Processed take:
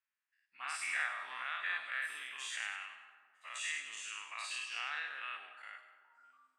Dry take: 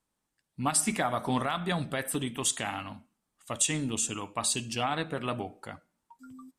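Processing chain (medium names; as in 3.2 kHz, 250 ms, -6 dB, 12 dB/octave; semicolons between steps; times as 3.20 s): every event in the spectrogram widened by 120 ms; ladder band-pass 2.9 kHz, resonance 70%; resonant high shelf 2.2 kHz -9.5 dB, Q 3; feedback echo behind a high-pass 98 ms, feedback 39%, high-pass 3.3 kHz, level -6 dB; on a send at -10 dB: reverberation RT60 2.2 s, pre-delay 60 ms; on the sum: trim +5.5 dB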